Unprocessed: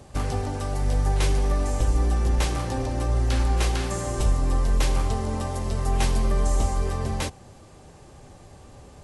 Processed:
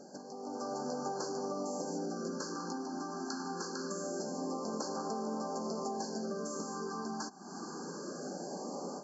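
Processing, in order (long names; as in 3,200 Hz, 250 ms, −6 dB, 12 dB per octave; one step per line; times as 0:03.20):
linear-phase brick-wall band-pass 170–7,600 Hz
downward compressor 16 to 1, threshold −45 dBFS, peak gain reduction 21.5 dB
auto-filter notch sine 0.24 Hz 520–2,100 Hz
automatic gain control gain up to 11.5 dB
brick-wall band-stop 1,700–4,200 Hz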